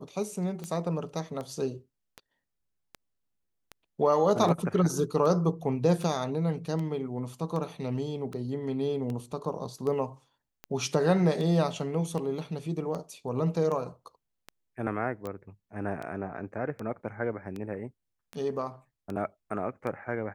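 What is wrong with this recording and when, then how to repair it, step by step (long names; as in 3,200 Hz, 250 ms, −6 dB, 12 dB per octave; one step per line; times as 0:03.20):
scratch tick 78 rpm −24 dBFS
0:15.27: click −25 dBFS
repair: click removal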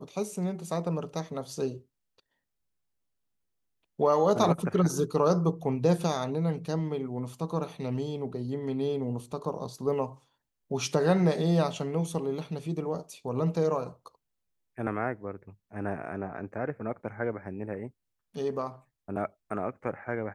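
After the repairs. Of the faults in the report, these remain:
none of them is left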